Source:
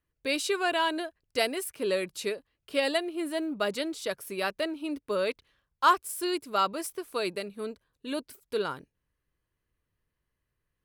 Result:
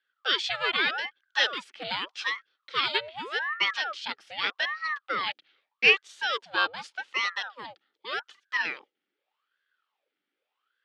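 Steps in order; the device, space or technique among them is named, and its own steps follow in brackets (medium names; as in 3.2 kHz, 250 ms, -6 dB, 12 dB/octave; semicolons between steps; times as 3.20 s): voice changer toy (ring modulator with a swept carrier 920 Hz, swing 75%, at 0.83 Hz; cabinet simulation 570–4800 Hz, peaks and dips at 680 Hz -10 dB, 1 kHz -9 dB, 3.2 kHz +5 dB); trim +6.5 dB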